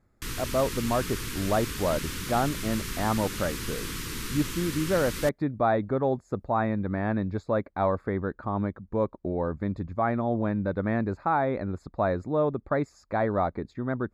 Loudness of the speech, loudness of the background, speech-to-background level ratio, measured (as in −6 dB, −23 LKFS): −28.5 LKFS, −34.5 LKFS, 6.0 dB